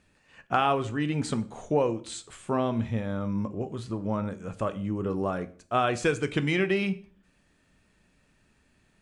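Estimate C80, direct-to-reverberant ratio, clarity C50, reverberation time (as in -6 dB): 21.5 dB, 11.0 dB, 18.0 dB, 0.45 s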